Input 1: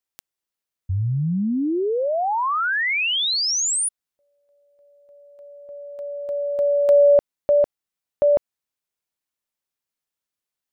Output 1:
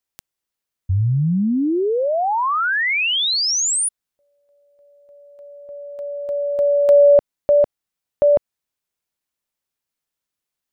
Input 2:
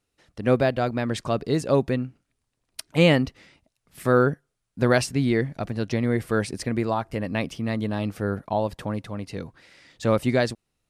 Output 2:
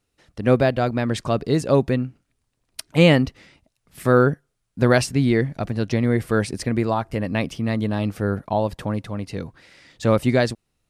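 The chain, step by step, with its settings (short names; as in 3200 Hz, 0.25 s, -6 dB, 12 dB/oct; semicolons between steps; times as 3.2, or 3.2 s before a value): low shelf 180 Hz +3 dB; gain +2.5 dB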